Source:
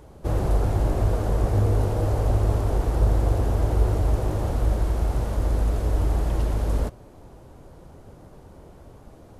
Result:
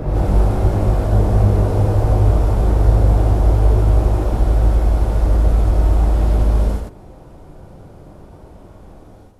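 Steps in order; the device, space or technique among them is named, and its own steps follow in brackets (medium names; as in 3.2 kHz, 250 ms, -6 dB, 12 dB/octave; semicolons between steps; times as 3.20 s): reverse reverb (reverse; reverberation RT60 1.5 s, pre-delay 74 ms, DRR -8 dB; reverse); trim -3.5 dB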